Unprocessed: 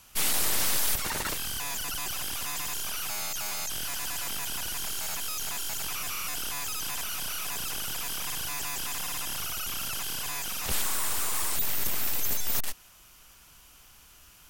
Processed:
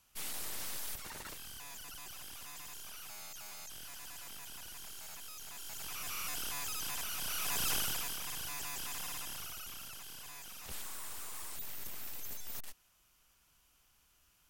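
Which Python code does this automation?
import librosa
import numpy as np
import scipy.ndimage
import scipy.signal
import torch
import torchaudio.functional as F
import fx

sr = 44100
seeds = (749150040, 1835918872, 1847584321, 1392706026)

y = fx.gain(x, sr, db=fx.line((5.48, -15.0), (6.2, -6.0), (7.16, -6.0), (7.73, 1.0), (8.19, -8.0), (9.09, -8.0), (10.0, -15.5)))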